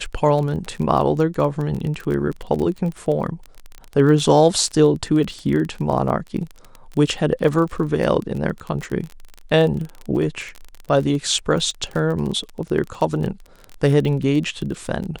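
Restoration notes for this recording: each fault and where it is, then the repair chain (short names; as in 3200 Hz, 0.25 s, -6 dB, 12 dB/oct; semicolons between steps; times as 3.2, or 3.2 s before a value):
crackle 25/s -25 dBFS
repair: de-click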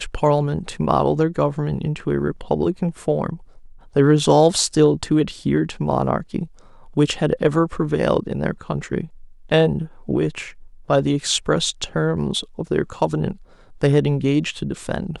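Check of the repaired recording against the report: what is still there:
none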